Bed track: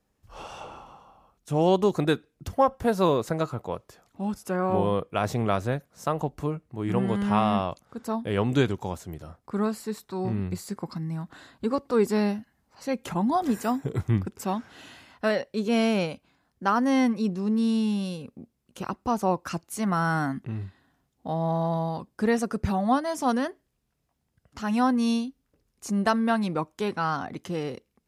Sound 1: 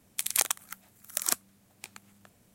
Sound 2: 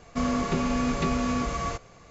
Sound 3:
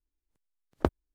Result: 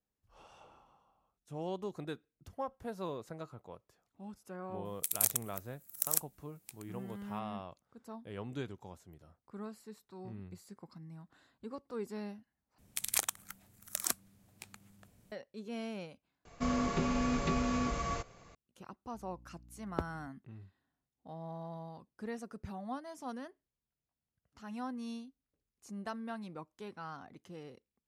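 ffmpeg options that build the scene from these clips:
-filter_complex "[1:a]asplit=2[s0][s1];[0:a]volume=0.126[s2];[s0]aemphasis=mode=production:type=50fm[s3];[s1]lowshelf=f=170:g=10.5[s4];[3:a]aeval=exprs='val(0)+0.00447*(sin(2*PI*60*n/s)+sin(2*PI*2*60*n/s)/2+sin(2*PI*3*60*n/s)/3+sin(2*PI*4*60*n/s)/4+sin(2*PI*5*60*n/s)/5)':c=same[s5];[s2]asplit=3[s6][s7][s8];[s6]atrim=end=12.784[s9];[s4]atrim=end=2.54,asetpts=PTS-STARTPTS,volume=0.501[s10];[s7]atrim=start=15.316:end=16.454[s11];[2:a]atrim=end=2.1,asetpts=PTS-STARTPTS,volume=0.501[s12];[s8]atrim=start=18.546[s13];[s3]atrim=end=2.54,asetpts=PTS-STARTPTS,volume=0.188,afade=t=in:d=0.004:c=hsin,afade=t=out:st=2.536:d=0.004:c=hsin,adelay=213885S[s14];[s5]atrim=end=1.14,asetpts=PTS-STARTPTS,volume=0.335,afade=t=in:d=0.004:c=hsin,afade=t=out:st=1.136:d=0.004:c=hsin,adelay=19140[s15];[s9][s10]acrossfade=d=0.004:c1=hsin:c2=hsin[s16];[s16][s11]acrossfade=d=0.004:c1=hsin:c2=hsin[s17];[s17][s12]acrossfade=d=0.004:c1=hsin:c2=hsin[s18];[s18][s13]acrossfade=d=0.004:c1=hsin:c2=hsin[s19];[s19][s14][s15]amix=inputs=3:normalize=0"

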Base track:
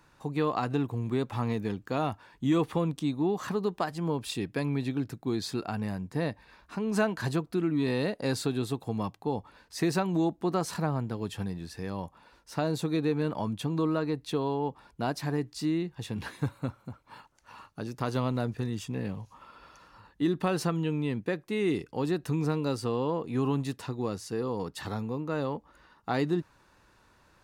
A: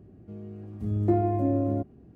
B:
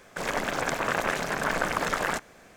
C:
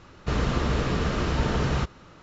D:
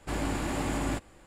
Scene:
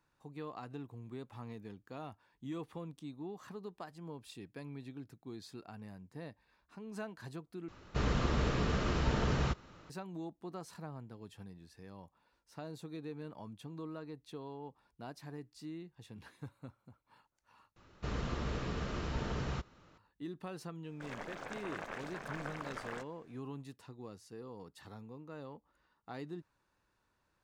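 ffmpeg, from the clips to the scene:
-filter_complex "[3:a]asplit=2[s0][s1];[0:a]volume=0.15[s2];[2:a]equalizer=f=13000:t=o:w=1.2:g=-12.5[s3];[s2]asplit=3[s4][s5][s6];[s4]atrim=end=7.684[s7];[s0]atrim=end=2.22,asetpts=PTS-STARTPTS,volume=0.447[s8];[s5]atrim=start=9.896:end=17.764[s9];[s1]atrim=end=2.22,asetpts=PTS-STARTPTS,volume=0.237[s10];[s6]atrim=start=19.976[s11];[s3]atrim=end=2.56,asetpts=PTS-STARTPTS,volume=0.15,afade=t=in:d=0.004:c=hsin,afade=t=out:st=2.556:d=0.004:c=hsin,adelay=919044S[s12];[s7][s8]acrossfade=d=0.004:c1=hsin:c2=hsin[s13];[s13][s9]acrossfade=d=0.004:c1=hsin:c2=hsin[s14];[s14][s10]acrossfade=d=0.004:c1=hsin:c2=hsin[s15];[s15][s11]acrossfade=d=0.004:c1=hsin:c2=hsin[s16];[s16][s12]amix=inputs=2:normalize=0"

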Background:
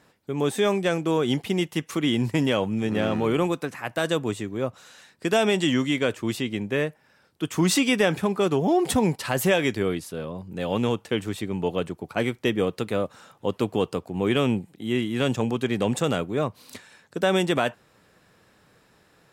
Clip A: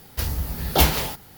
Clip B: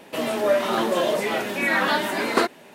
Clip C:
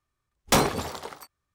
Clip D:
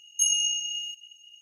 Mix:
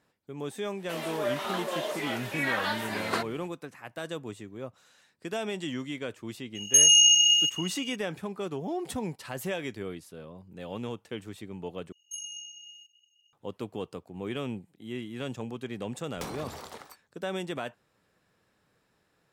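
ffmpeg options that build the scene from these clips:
-filter_complex "[4:a]asplit=2[s0][s1];[0:a]volume=0.251[s2];[2:a]highpass=f=700:p=1[s3];[s0]alimiter=level_in=11.2:limit=0.891:release=50:level=0:latency=1[s4];[3:a]acompressor=threshold=0.02:ratio=4:attack=4.2:release=43:knee=1:detection=peak[s5];[s2]asplit=2[s6][s7];[s6]atrim=end=11.924[s8];[s1]atrim=end=1.41,asetpts=PTS-STARTPTS,volume=0.158[s9];[s7]atrim=start=13.326[s10];[s3]atrim=end=2.74,asetpts=PTS-STARTPTS,volume=0.447,afade=t=in:d=0.05,afade=t=out:st=2.69:d=0.05,adelay=760[s11];[s4]atrim=end=1.41,asetpts=PTS-STARTPTS,volume=0.355,afade=t=in:d=0.004:c=hsin,afade=t=out:st=1.406:d=0.004:c=hsin,adelay=6550[s12];[s5]atrim=end=1.54,asetpts=PTS-STARTPTS,volume=0.531,afade=t=in:d=0.004:c=hsin,afade=t=out:st=1.536:d=0.004:c=hsin,adelay=15690[s13];[s8][s9]acrossfade=d=0.004:c1=hsin:c2=hsin[s14];[s14][s10]acrossfade=d=0.004:c1=hsin:c2=hsin[s15];[s15][s11][s12][s13]amix=inputs=4:normalize=0"

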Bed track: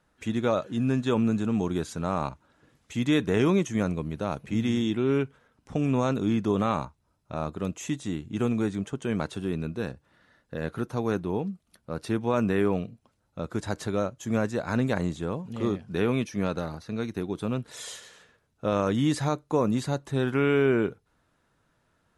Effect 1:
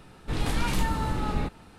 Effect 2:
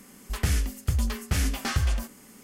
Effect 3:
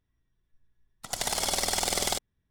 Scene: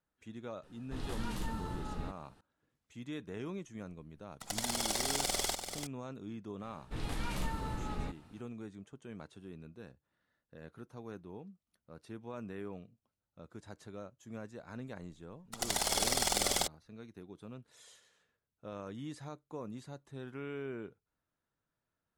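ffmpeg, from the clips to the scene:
-filter_complex "[1:a]asplit=2[s0][s1];[3:a]asplit=2[s2][s3];[0:a]volume=0.112[s4];[s0]equalizer=f=2300:t=o:w=0.2:g=-8[s5];[s2]aecho=1:1:388:0.398[s6];[s5]atrim=end=1.78,asetpts=PTS-STARTPTS,volume=0.237,afade=t=in:d=0.004:c=hsin,afade=t=out:st=1.776:d=0.004:c=hsin,adelay=630[s7];[s6]atrim=end=2.5,asetpts=PTS-STARTPTS,volume=0.473,afade=t=in:d=0.004:c=hsin,afade=t=out:st=2.496:d=0.004:c=hsin,adelay=148617S[s8];[s1]atrim=end=1.78,asetpts=PTS-STARTPTS,volume=0.299,afade=t=in:d=0.004:c=hsin,afade=t=out:st=1.776:d=0.004:c=hsin,adelay=6630[s9];[s3]atrim=end=2.5,asetpts=PTS-STARTPTS,volume=0.668,afade=t=in:d=0.004:c=hsin,afade=t=out:st=2.496:d=0.004:c=hsin,adelay=14490[s10];[s4][s7][s8][s9][s10]amix=inputs=5:normalize=0"

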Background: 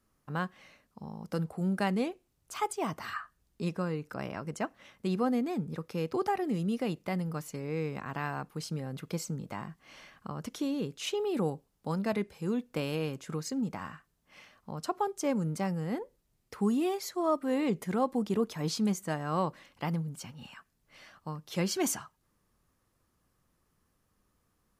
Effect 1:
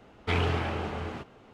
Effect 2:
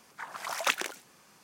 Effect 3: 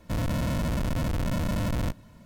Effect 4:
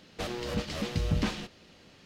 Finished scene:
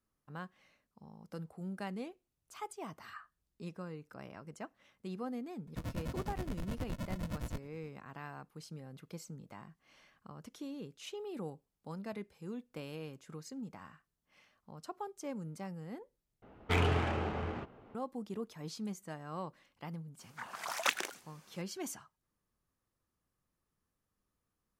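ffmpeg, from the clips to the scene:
-filter_complex "[0:a]volume=0.266[s0];[3:a]tremolo=f=9.6:d=0.92[s1];[1:a]adynamicsmooth=sensitivity=7:basefreq=2200[s2];[s0]asplit=2[s3][s4];[s3]atrim=end=16.424[s5];[s2]atrim=end=1.53,asetpts=PTS-STARTPTS,volume=0.75[s6];[s4]atrim=start=17.946[s7];[s1]atrim=end=2.25,asetpts=PTS-STARTPTS,volume=0.335,afade=t=in:d=0.004:c=hsin,afade=t=out:st=2.246:d=0.004:c=hsin,adelay=5670[s8];[2:a]atrim=end=1.43,asetpts=PTS-STARTPTS,volume=0.631,afade=t=in:d=0.004:c=hsin,afade=t=out:st=1.426:d=0.004:c=hsin,adelay=20190[s9];[s5][s6]acrossfade=d=0.004:c1=hsin:c2=hsin[s10];[s10][s7]acrossfade=d=0.004:c1=hsin:c2=hsin[s11];[s11][s8][s9]amix=inputs=3:normalize=0"

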